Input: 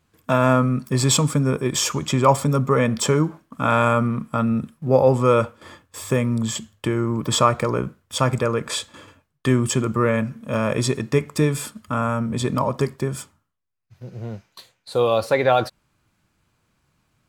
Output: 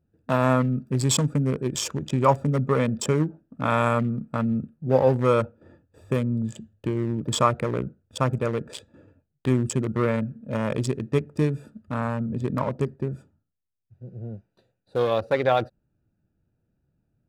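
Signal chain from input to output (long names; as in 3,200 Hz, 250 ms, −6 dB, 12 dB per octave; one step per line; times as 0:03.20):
adaptive Wiener filter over 41 samples
0:11.96–0:13.12: high-shelf EQ 9,400 Hz −5.5 dB
level −3 dB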